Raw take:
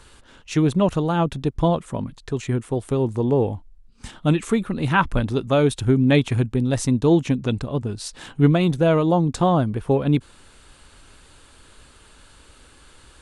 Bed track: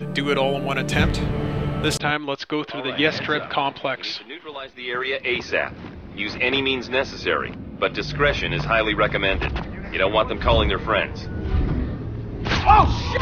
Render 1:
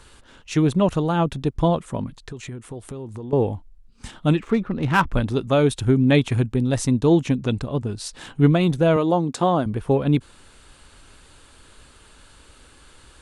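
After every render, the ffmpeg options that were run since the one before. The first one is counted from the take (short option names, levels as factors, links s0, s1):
-filter_complex "[0:a]asettb=1/sr,asplit=3[s0][s1][s2];[s0]atrim=end=2.214[s3];[s1]atrim=start=2.21:end=3.33,asetpts=PTS-STARTPTS,afade=t=in:d=0.004:c=qsin,afade=t=out:st=1.116:d=0.004:c=qsin,acompressor=threshold=0.0282:ratio=5:attack=3.2:release=140:knee=1:detection=peak[s4];[s2]atrim=start=3.326[s5];[s3][s4]acrossfade=d=0.004:c1=hsin:c2=qsin[s6];[s6][s5]acrossfade=d=0.004:c1=qsin:c2=hsin,asettb=1/sr,asplit=3[s7][s8][s9];[s7]atrim=end=4.374[s10];[s8]atrim=start=4.37:end=5.13,asetpts=PTS-STARTPTS,afade=t=in:d=0.004:c=qsin,afade=t=out:st=0.756:d=0.004:c=qsin,adynamicsmooth=sensitivity=2.5:basefreq=1900[s11];[s9]atrim=start=5.126[s12];[s10][s11]acrossfade=d=0.004:c1=hsin:c2=qsin[s13];[s13][s12]acrossfade=d=0.004:c1=qsin:c2=hsin,asettb=1/sr,asplit=3[s14][s15][s16];[s14]atrim=end=8.964[s17];[s15]atrim=start=8.96:end=9.66,asetpts=PTS-STARTPTS,afade=t=in:d=0.004:c=qsin,afade=t=out:st=0.696:d=0.004:c=qsin,highpass=200[s18];[s16]atrim=start=9.656[s19];[s17][s18]acrossfade=d=0.004:c1=hsin:c2=qsin[s20];[s20][s19]acrossfade=d=0.004:c1=qsin:c2=hsin"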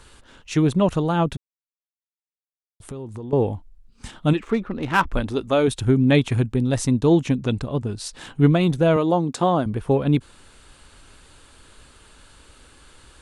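-filter_complex "[0:a]asettb=1/sr,asplit=3[s0][s1][s2];[s0]atrim=end=4.334[s3];[s1]atrim=start=4.33:end=5.68,asetpts=PTS-STARTPTS,afade=t=in:d=0.004:c=qsin,afade=t=out:st=1.346:d=0.004:c=qsin,equalizer=f=140:t=o:w=0.77:g=-9.5[s4];[s2]atrim=start=5.676[s5];[s3][s4]acrossfade=d=0.004:c1=hsin:c2=qsin[s6];[s6][s5]acrossfade=d=0.004:c1=qsin:c2=hsin,asplit=3[s7][s8][s9];[s7]atrim=end=1.37,asetpts=PTS-STARTPTS,afade=t=out:st=1.366:d=0.004:c=hsin[s10];[s8]atrim=start=1.37:end=2.8,asetpts=PTS-STARTPTS,volume=0[s11];[s9]atrim=start=2.8,asetpts=PTS-STARTPTS,afade=t=in:d=0.004:c=hsin[s12];[s10][s11][s12]concat=n=3:v=0:a=1"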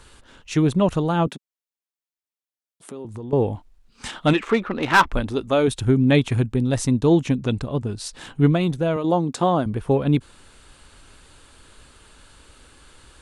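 -filter_complex "[0:a]asettb=1/sr,asplit=3[s0][s1][s2];[s0]atrim=end=1.274[s3];[s1]atrim=start=1.27:end=3.05,asetpts=PTS-STARTPTS,afade=t=in:d=0.004:c=qsin,afade=t=out:st=1.776:d=0.004:c=qsin,highpass=f=190:w=0.5412,highpass=f=190:w=1.3066[s4];[s2]atrim=start=3.046[s5];[s3][s4]acrossfade=d=0.004:c1=hsin:c2=qsin[s6];[s6][s5]acrossfade=d=0.004:c1=qsin:c2=hsin,asettb=1/sr,asplit=3[s7][s8][s9];[s7]atrim=end=3.554[s10];[s8]atrim=start=3.55:end=5.12,asetpts=PTS-STARTPTS,afade=t=in:d=0.004:c=qsin,afade=t=out:st=1.566:d=0.004:c=qsin,asplit=2[s11][s12];[s12]highpass=f=720:p=1,volume=5.62,asoftclip=type=tanh:threshold=0.596[s13];[s11][s13]amix=inputs=2:normalize=0,lowpass=f=5800:p=1,volume=0.501[s14];[s9]atrim=start=5.116[s15];[s10][s14]acrossfade=d=0.004:c1=hsin:c2=qsin[s16];[s16][s15]acrossfade=d=0.004:c1=qsin:c2=hsin,asplit=2[s17][s18];[s17]atrim=end=9.04,asetpts=PTS-STARTPTS,afade=t=out:st=8.33:d=0.71:silence=0.473151[s19];[s18]atrim=start=9.04,asetpts=PTS-STARTPTS,afade=t=in:d=0.004:c=hsin:silence=0.473151[s20];[s19][s20]concat=n=2:v=0:a=1"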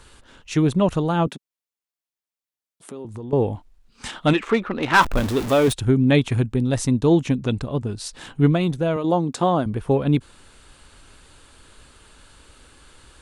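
-filter_complex "[0:a]asettb=1/sr,asplit=3[s0][s1][s2];[s0]atrim=end=5.014[s3];[s1]atrim=start=5.01:end=5.73,asetpts=PTS-STARTPTS,afade=t=in:d=0.004:c=qsin,afade=t=out:st=0.716:d=0.004:c=qsin,aeval=exprs='val(0)+0.5*0.0631*sgn(val(0))':c=same[s4];[s2]atrim=start=5.726[s5];[s3][s4]acrossfade=d=0.004:c1=hsin:c2=qsin[s6];[s6][s5]acrossfade=d=0.004:c1=qsin:c2=hsin"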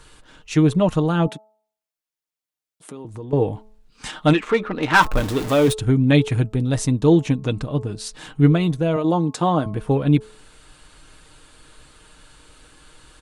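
-af "aecho=1:1:6.5:0.42,bandreject=f=215.9:t=h:w=4,bandreject=f=431.8:t=h:w=4,bandreject=f=647.7:t=h:w=4,bandreject=f=863.6:t=h:w=4,bandreject=f=1079.5:t=h:w=4,bandreject=f=1295.4:t=h:w=4"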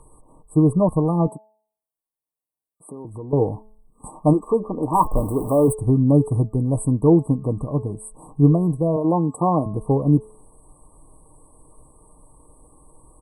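-af "afftfilt=real='re*(1-between(b*sr/4096,1200,7800))':imag='im*(1-between(b*sr/4096,1200,7800))':win_size=4096:overlap=0.75"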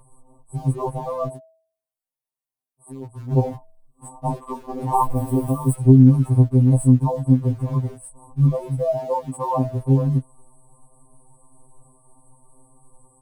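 -filter_complex "[0:a]asplit=2[s0][s1];[s1]aeval=exprs='val(0)*gte(abs(val(0)),0.0335)':c=same,volume=0.282[s2];[s0][s2]amix=inputs=2:normalize=0,afftfilt=real='re*2.45*eq(mod(b,6),0)':imag='im*2.45*eq(mod(b,6),0)':win_size=2048:overlap=0.75"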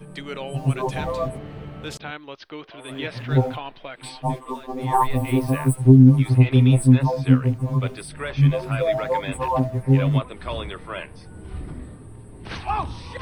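-filter_complex "[1:a]volume=0.251[s0];[0:a][s0]amix=inputs=2:normalize=0"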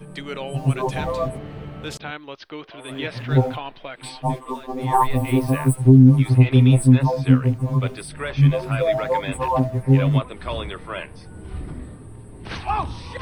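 -af "volume=1.19,alimiter=limit=0.708:level=0:latency=1"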